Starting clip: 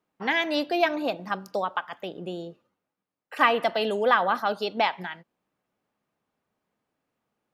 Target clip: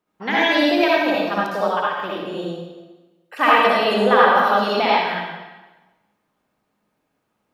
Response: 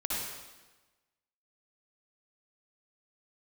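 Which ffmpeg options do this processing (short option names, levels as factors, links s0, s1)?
-filter_complex "[1:a]atrim=start_sample=2205[s0];[0:a][s0]afir=irnorm=-1:irlink=0,volume=1.33"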